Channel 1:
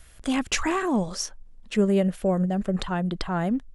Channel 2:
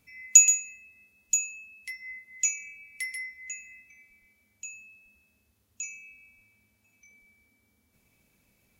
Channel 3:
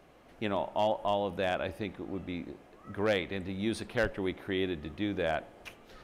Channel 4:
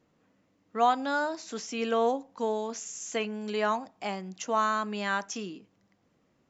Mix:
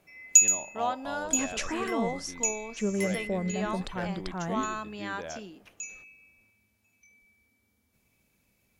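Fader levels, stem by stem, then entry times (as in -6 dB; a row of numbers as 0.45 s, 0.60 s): -8.0 dB, -2.5 dB, -9.5 dB, -6.5 dB; 1.05 s, 0.00 s, 0.00 s, 0.00 s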